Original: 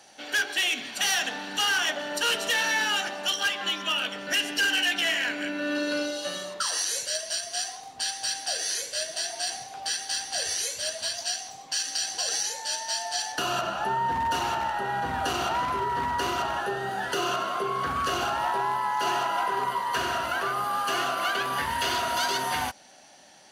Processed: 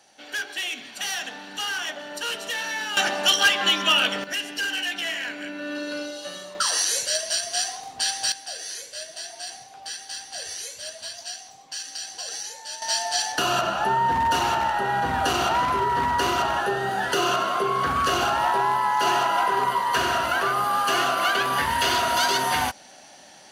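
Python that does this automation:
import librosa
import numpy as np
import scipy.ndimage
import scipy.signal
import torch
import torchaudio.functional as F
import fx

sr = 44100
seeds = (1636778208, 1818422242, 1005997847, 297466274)

y = fx.gain(x, sr, db=fx.steps((0.0, -4.0), (2.97, 8.0), (4.24, -3.0), (6.55, 5.0), (8.32, -5.0), (12.82, 5.0)))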